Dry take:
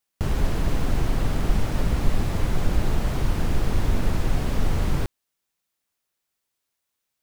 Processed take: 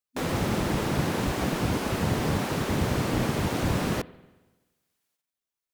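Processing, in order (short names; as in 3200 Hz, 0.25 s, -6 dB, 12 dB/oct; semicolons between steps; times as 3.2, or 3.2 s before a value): varispeed +26%; spring tank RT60 1.2 s, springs 48/52 ms, chirp 30 ms, DRR 19 dB; spectral gate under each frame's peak -10 dB weak; gain +2.5 dB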